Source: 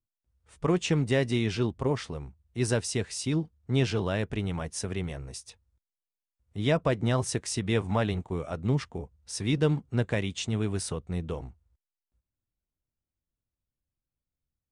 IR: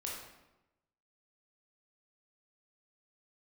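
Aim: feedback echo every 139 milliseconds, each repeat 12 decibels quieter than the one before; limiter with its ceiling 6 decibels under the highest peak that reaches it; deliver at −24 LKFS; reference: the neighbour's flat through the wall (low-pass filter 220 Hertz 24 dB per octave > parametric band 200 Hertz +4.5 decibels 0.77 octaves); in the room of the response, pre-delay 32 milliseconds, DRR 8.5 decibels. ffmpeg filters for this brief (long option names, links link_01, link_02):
-filter_complex "[0:a]alimiter=limit=-19.5dB:level=0:latency=1,aecho=1:1:139|278|417:0.251|0.0628|0.0157,asplit=2[link_01][link_02];[1:a]atrim=start_sample=2205,adelay=32[link_03];[link_02][link_03]afir=irnorm=-1:irlink=0,volume=-9dB[link_04];[link_01][link_04]amix=inputs=2:normalize=0,lowpass=frequency=220:width=0.5412,lowpass=frequency=220:width=1.3066,equalizer=frequency=200:width_type=o:width=0.77:gain=4.5,volume=8dB"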